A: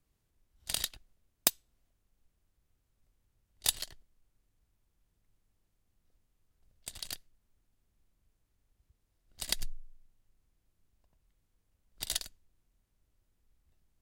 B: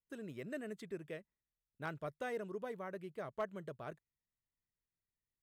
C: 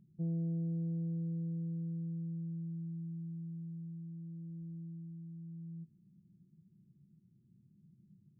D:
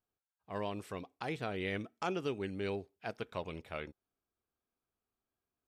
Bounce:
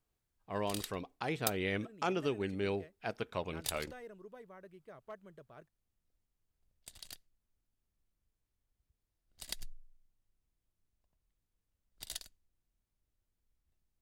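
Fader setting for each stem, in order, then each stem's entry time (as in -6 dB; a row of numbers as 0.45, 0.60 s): -9.0 dB, -9.0 dB, off, +2.0 dB; 0.00 s, 1.70 s, off, 0.00 s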